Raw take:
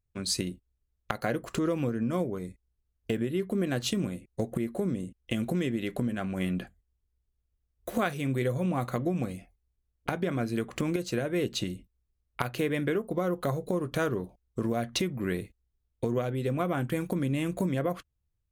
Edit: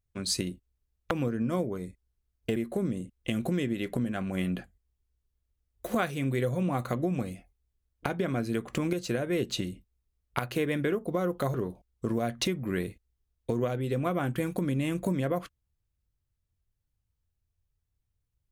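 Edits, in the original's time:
0:01.11–0:01.72: remove
0:03.17–0:04.59: remove
0:13.57–0:14.08: remove

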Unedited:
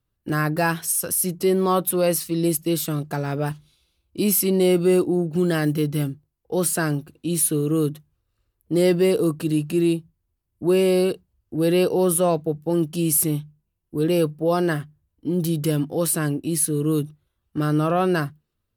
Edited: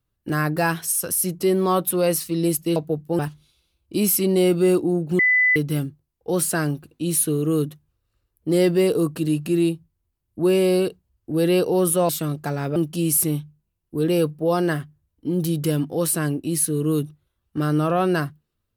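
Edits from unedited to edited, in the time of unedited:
0:02.76–0:03.43: swap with 0:12.33–0:12.76
0:05.43–0:05.80: beep over 2,000 Hz −14 dBFS

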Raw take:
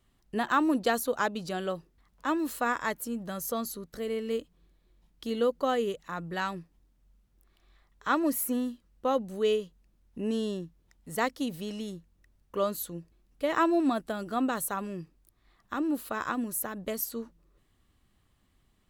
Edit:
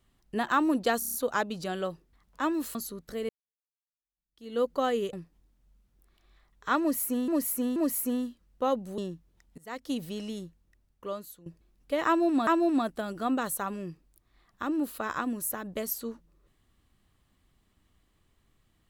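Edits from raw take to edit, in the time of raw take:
0:00.99: stutter 0.03 s, 6 plays
0:02.60–0:03.60: remove
0:04.14–0:05.47: fade in exponential
0:05.98–0:06.52: remove
0:08.19–0:08.67: repeat, 3 plays
0:09.41–0:10.49: remove
0:11.09–0:11.41: fade in quadratic, from −20 dB
0:11.94–0:12.97: fade out, to −17 dB
0:13.58–0:13.98: repeat, 2 plays

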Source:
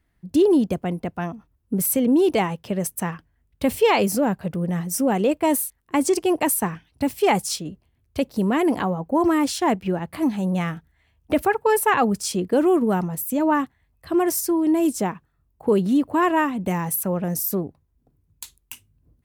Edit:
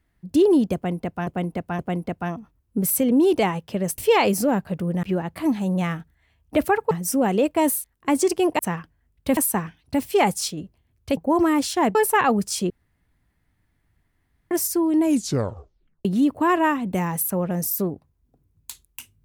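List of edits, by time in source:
0:00.75–0:01.27: repeat, 3 plays
0:02.94–0:03.72: move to 0:06.45
0:08.25–0:09.02: remove
0:09.80–0:11.68: move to 0:04.77
0:12.43–0:14.24: fill with room tone
0:14.75: tape stop 1.03 s

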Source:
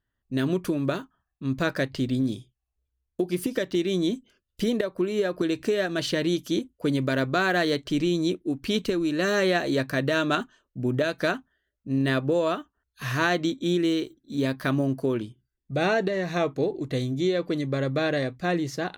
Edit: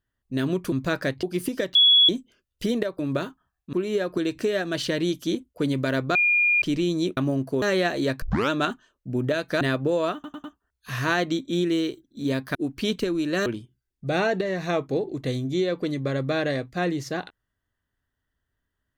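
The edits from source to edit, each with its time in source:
0:00.72–0:01.46: move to 0:04.97
0:01.97–0:03.21: remove
0:03.73–0:04.07: beep over 3,370 Hz −12.5 dBFS
0:07.39–0:07.86: beep over 2,420 Hz −17 dBFS
0:08.41–0:09.32: swap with 0:14.68–0:15.13
0:09.92: tape start 0.28 s
0:11.31–0:12.04: remove
0:12.57: stutter 0.10 s, 4 plays

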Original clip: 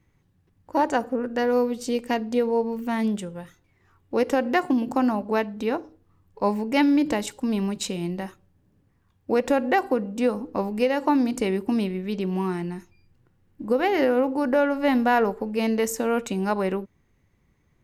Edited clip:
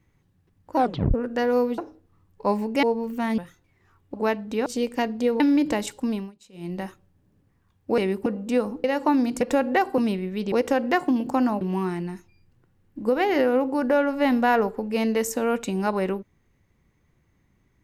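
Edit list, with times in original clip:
0:00.77: tape stop 0.37 s
0:01.78–0:02.52: swap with 0:05.75–0:06.80
0:03.07–0:03.38: remove
0:04.14–0:05.23: move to 0:12.24
0:07.47–0:08.17: duck −23.5 dB, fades 0.25 s
0:09.38–0:09.95: swap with 0:11.42–0:11.70
0:10.53–0:10.85: remove

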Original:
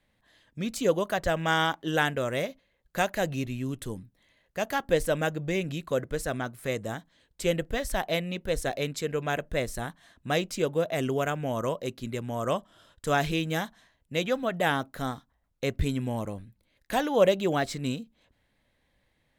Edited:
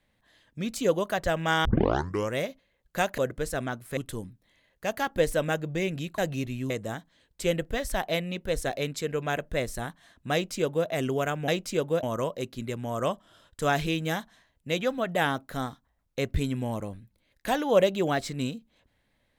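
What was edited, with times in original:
0:01.65: tape start 0.68 s
0:03.18–0:03.70: swap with 0:05.91–0:06.70
0:10.33–0:10.88: duplicate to 0:11.48

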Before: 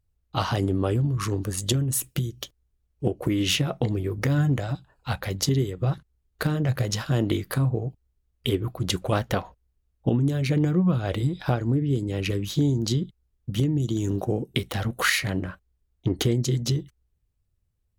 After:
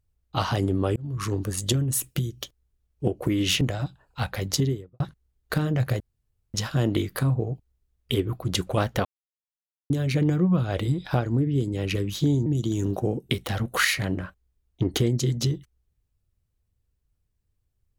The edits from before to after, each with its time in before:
0:00.96–0:01.40: fade in equal-power
0:03.61–0:04.50: remove
0:05.44–0:05.89: fade out and dull
0:06.89: splice in room tone 0.54 s
0:09.40–0:10.25: silence
0:12.81–0:13.71: remove

